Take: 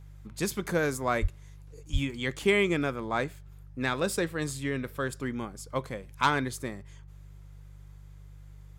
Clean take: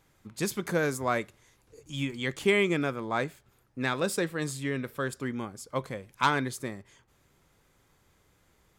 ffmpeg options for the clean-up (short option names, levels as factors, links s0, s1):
-filter_complex "[0:a]bandreject=f=49.4:t=h:w=4,bandreject=f=98.8:t=h:w=4,bandreject=f=148.2:t=h:w=4,asplit=3[s0][s1][s2];[s0]afade=t=out:st=1.21:d=0.02[s3];[s1]highpass=f=140:w=0.5412,highpass=f=140:w=1.3066,afade=t=in:st=1.21:d=0.02,afade=t=out:st=1.33:d=0.02[s4];[s2]afade=t=in:st=1.33:d=0.02[s5];[s3][s4][s5]amix=inputs=3:normalize=0,asplit=3[s6][s7][s8];[s6]afade=t=out:st=1.92:d=0.02[s9];[s7]highpass=f=140:w=0.5412,highpass=f=140:w=1.3066,afade=t=in:st=1.92:d=0.02,afade=t=out:st=2.04:d=0.02[s10];[s8]afade=t=in:st=2.04:d=0.02[s11];[s9][s10][s11]amix=inputs=3:normalize=0"